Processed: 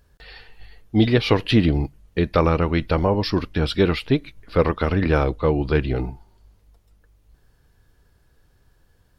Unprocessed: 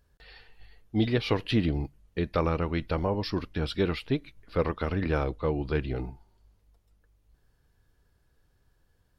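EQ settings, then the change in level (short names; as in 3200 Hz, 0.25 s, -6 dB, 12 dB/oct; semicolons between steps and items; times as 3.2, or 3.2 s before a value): none; +8.5 dB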